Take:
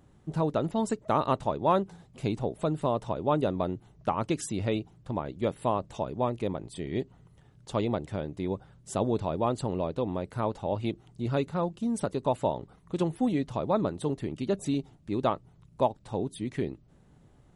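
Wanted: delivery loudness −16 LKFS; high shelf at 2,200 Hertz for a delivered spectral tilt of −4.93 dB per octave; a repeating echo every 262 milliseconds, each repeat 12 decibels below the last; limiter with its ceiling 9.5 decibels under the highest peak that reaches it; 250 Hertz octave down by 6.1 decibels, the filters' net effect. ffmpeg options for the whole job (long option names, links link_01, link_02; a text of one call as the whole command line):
ffmpeg -i in.wav -af "equalizer=frequency=250:width_type=o:gain=-8.5,highshelf=frequency=2200:gain=7,alimiter=limit=-20.5dB:level=0:latency=1,aecho=1:1:262|524|786:0.251|0.0628|0.0157,volume=18dB" out.wav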